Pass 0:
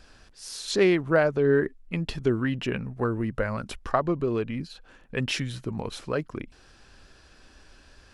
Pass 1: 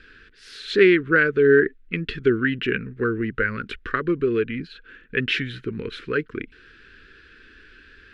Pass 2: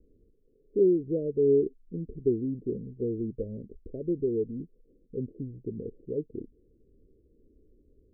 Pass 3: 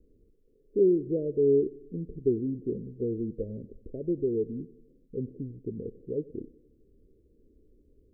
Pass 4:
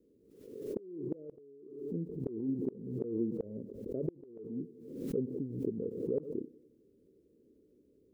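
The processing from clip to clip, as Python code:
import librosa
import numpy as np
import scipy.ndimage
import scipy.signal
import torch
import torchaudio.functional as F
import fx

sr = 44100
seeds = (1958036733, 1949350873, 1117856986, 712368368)

y1 = fx.curve_eq(x, sr, hz=(150.0, 450.0, 720.0, 1500.0, 3700.0, 5700.0, 9900.0), db=(0, 8, -27, 13, 5, -10, -15))
y1 = F.gain(torch.from_numpy(y1), -1.0).numpy()
y2 = scipy.signal.sosfilt(scipy.signal.butter(16, 670.0, 'lowpass', fs=sr, output='sos'), y1)
y2 = F.gain(torch.from_numpy(y2), -6.5).numpy()
y3 = fx.echo_feedback(y2, sr, ms=94, feedback_pct=59, wet_db=-20.5)
y4 = scipy.signal.sosfilt(scipy.signal.butter(2, 170.0, 'highpass', fs=sr, output='sos'), y3)
y4 = fx.gate_flip(y4, sr, shuts_db=-23.0, range_db=-34)
y4 = fx.pre_swell(y4, sr, db_per_s=59.0)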